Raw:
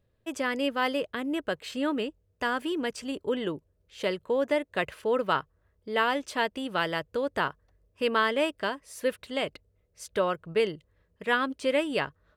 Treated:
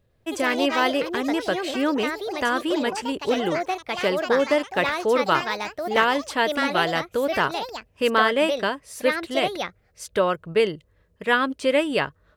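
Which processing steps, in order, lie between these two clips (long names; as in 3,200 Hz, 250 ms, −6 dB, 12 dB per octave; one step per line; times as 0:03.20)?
delay with pitch and tempo change per echo 106 ms, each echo +4 semitones, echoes 3, each echo −6 dB
level +5.5 dB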